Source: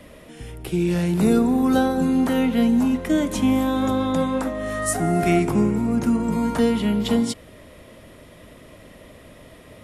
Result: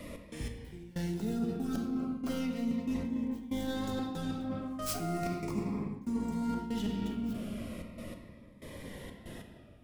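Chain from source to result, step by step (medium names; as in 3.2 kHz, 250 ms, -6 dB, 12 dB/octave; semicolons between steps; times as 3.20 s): tracing distortion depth 0.4 ms; trance gate "x.x...xx" 94 bpm -24 dB; on a send at -2.5 dB: reverberation RT60 2.3 s, pre-delay 3 ms; on the sum: dynamic bell 5.3 kHz, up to +6 dB, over -53 dBFS, Q 1.7; reverse; compression 8:1, threshold -31 dBFS, peak gain reduction 20 dB; reverse; Shepard-style phaser falling 0.37 Hz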